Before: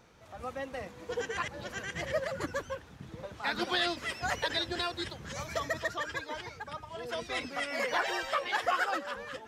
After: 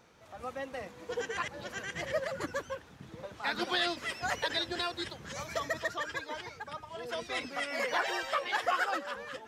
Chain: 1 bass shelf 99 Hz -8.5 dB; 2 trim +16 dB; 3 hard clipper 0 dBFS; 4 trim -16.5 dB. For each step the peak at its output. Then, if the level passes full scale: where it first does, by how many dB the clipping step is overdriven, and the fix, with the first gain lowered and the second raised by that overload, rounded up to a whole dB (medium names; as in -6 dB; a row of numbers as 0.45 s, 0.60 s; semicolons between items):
-18.5 dBFS, -2.5 dBFS, -2.5 dBFS, -19.0 dBFS; nothing clips